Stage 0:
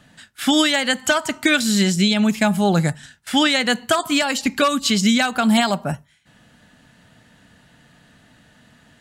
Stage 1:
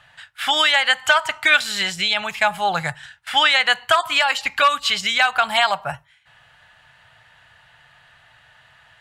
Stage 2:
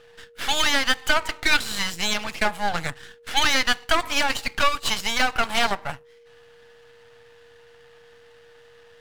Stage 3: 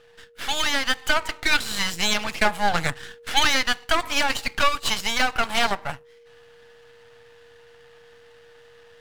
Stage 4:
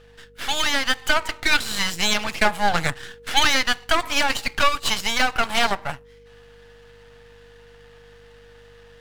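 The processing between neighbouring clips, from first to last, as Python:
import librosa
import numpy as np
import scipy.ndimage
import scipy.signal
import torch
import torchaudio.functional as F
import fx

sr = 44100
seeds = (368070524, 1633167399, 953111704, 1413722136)

y1 = fx.curve_eq(x, sr, hz=(130.0, 230.0, 830.0, 2900.0, 6200.0), db=(0, -22, 9, 9, -2))
y1 = y1 * 10.0 ** (-4.5 / 20.0)
y2 = np.maximum(y1, 0.0)
y2 = y2 + 10.0 ** (-50.0 / 20.0) * np.sin(2.0 * np.pi * 470.0 * np.arange(len(y2)) / sr)
y3 = fx.rider(y2, sr, range_db=10, speed_s=0.5)
y4 = fx.add_hum(y3, sr, base_hz=50, snr_db=31)
y4 = y4 * 10.0 ** (1.5 / 20.0)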